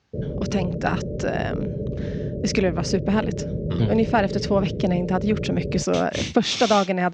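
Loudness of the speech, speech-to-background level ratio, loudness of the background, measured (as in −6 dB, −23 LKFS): −23.5 LKFS, 5.5 dB, −29.0 LKFS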